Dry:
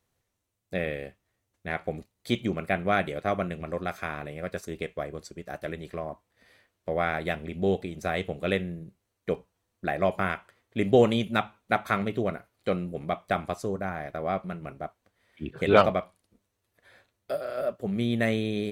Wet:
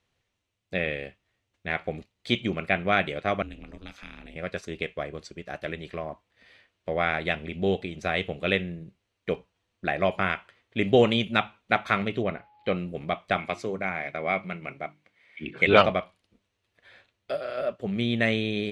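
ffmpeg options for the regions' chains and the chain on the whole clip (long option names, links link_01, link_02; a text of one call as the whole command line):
ffmpeg -i in.wav -filter_complex "[0:a]asettb=1/sr,asplit=3[link_01][link_02][link_03];[link_01]atrim=end=3.424[link_04];[link_02]atrim=start=3.42:end=4.36,asetpts=PTS-STARTPTS,afade=type=in:duration=0.004:curve=qsin,afade=type=out:start_time=0.936:duration=0.004:curve=qsin,acrossover=split=190|3000[link_05][link_06][link_07];[link_06]acompressor=threshold=-46dB:ratio=6:attack=3.2:release=140:knee=2.83:detection=peak[link_08];[link_05][link_08][link_07]amix=inputs=3:normalize=0,aeval=exprs='val(0)*sin(2*PI*100*n/s)':channel_layout=same[link_09];[link_03]atrim=start=4.356[link_10];[link_04][link_09]acrossfade=duration=0.004:curve1=hsin:curve2=qsin[link_11];[link_11][link_10]acrossfade=duration=0.004:curve1=qsin:curve2=hsin,asettb=1/sr,asplit=3[link_12][link_13][link_14];[link_12]atrim=end=12.234[link_15];[link_13]atrim=start=12.23:end=12.76,asetpts=PTS-STARTPTS,afade=type=in:duration=0.004:curve=qsin,afade=type=out:start_time=0.526:duration=0.004:curve=qsin,lowpass=3500,bandreject=frequency=1400:width=13,aeval=exprs='val(0)+0.00141*sin(2*PI*840*n/s)':channel_layout=same[link_16];[link_14]atrim=start=12.756[link_17];[link_15][link_16]acrossfade=duration=0.004:curve1=hsin:curve2=qsin[link_18];[link_18][link_17]acrossfade=duration=0.004:curve1=qsin:curve2=hsin,asettb=1/sr,asplit=3[link_19][link_20][link_21];[link_19]atrim=end=13.384[link_22];[link_20]atrim=start=13.38:end=15.67,asetpts=PTS-STARTPTS,afade=type=in:duration=0.004:curve=qsin,afade=type=out:start_time=2.286:duration=0.004:curve=qsin,highpass=120,equalizer=frequency=2200:width=6.8:gain=13,bandreject=frequency=50:width_type=h:width=6,bandreject=frequency=100:width_type=h:width=6,bandreject=frequency=150:width_type=h:width=6,bandreject=frequency=200:width_type=h:width=6,bandreject=frequency=250:width_type=h:width=6,bandreject=frequency=300:width_type=h:width=6,bandreject=frequency=350:width_type=h:width=6[link_23];[link_21]atrim=start=15.666[link_24];[link_22][link_23]acrossfade=duration=0.004:curve1=hsin:curve2=qsin[link_25];[link_25][link_24]acrossfade=duration=0.004:curve1=qsin:curve2=hsin,lowpass=6400,equalizer=frequency=2800:width=1.2:gain=8" out.wav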